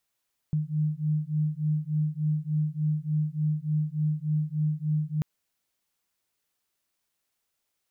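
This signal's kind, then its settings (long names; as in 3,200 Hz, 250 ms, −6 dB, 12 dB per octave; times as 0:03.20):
two tones that beat 151 Hz, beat 3.4 Hz, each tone −27.5 dBFS 4.69 s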